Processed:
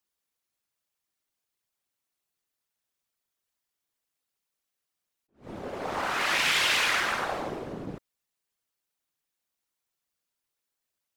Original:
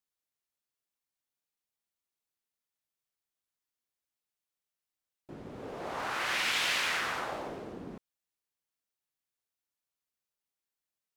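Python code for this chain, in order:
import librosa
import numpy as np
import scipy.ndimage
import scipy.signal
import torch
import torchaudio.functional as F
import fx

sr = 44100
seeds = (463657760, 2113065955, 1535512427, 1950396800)

y = fx.whisperise(x, sr, seeds[0])
y = fx.attack_slew(y, sr, db_per_s=200.0)
y = F.gain(torch.from_numpy(y), 5.5).numpy()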